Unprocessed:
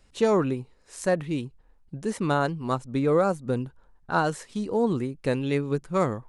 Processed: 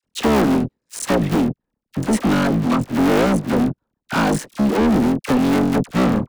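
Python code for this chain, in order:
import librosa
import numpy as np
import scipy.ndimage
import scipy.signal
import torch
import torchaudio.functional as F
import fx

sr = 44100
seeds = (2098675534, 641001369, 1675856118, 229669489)

y = fx.cycle_switch(x, sr, every=3, mode='muted')
y = fx.highpass(y, sr, hz=110.0, slope=6)
y = fx.peak_eq(y, sr, hz=230.0, db=10.0, octaves=1.2)
y = fx.leveller(y, sr, passes=5)
y = fx.dispersion(y, sr, late='lows', ms=42.0, hz=1000.0)
y = y * librosa.db_to_amplitude(-4.5)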